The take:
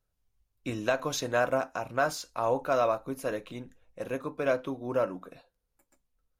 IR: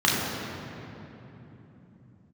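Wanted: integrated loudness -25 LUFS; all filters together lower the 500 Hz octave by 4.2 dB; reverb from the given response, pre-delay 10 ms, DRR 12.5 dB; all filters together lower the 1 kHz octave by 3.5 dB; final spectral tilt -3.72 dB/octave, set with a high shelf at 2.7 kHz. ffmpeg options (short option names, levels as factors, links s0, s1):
-filter_complex "[0:a]equalizer=f=500:t=o:g=-4,equalizer=f=1000:t=o:g=-4,highshelf=f=2700:g=4,asplit=2[s0][s1];[1:a]atrim=start_sample=2205,adelay=10[s2];[s1][s2]afir=irnorm=-1:irlink=0,volume=0.0299[s3];[s0][s3]amix=inputs=2:normalize=0,volume=2.51"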